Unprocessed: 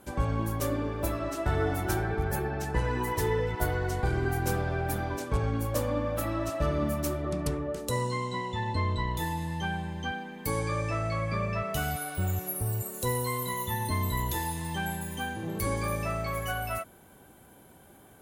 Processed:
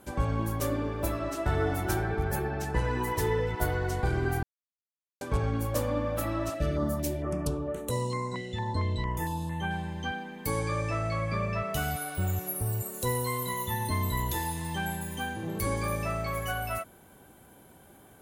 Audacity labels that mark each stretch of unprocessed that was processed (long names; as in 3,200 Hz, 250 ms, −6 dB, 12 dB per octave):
4.430000	5.210000	silence
6.540000	9.710000	notch on a step sequencer 4.4 Hz 990–5,000 Hz